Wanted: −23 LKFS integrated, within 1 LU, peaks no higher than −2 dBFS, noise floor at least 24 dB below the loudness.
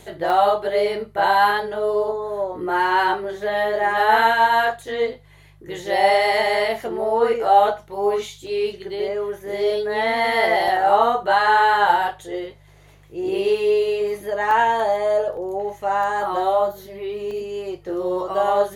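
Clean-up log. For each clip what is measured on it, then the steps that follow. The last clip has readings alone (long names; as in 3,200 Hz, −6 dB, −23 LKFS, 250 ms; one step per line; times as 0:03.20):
number of dropouts 6; longest dropout 1.1 ms; mains hum 50 Hz; hum harmonics up to 150 Hz; level of the hum −49 dBFS; integrated loudness −20.0 LKFS; sample peak −4.0 dBFS; target loudness −23.0 LKFS
→ repair the gap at 0:00.30/0:08.47/0:10.68/0:14.51/0:15.37/0:17.31, 1.1 ms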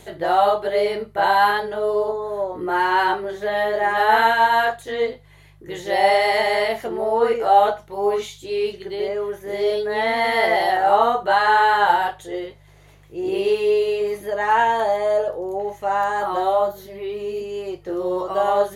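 number of dropouts 0; mains hum 50 Hz; hum harmonics up to 150 Hz; level of the hum −49 dBFS
→ hum removal 50 Hz, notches 3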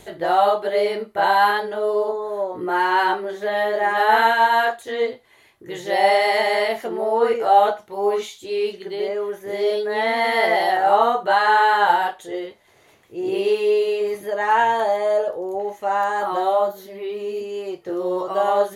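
mains hum none found; integrated loudness −20.0 LKFS; sample peak −3.5 dBFS; target loudness −23.0 LKFS
→ level −3 dB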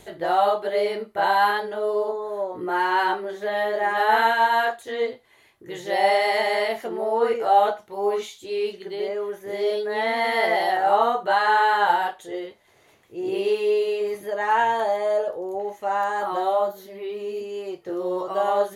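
integrated loudness −23.0 LKFS; sample peak −6.5 dBFS; background noise floor −57 dBFS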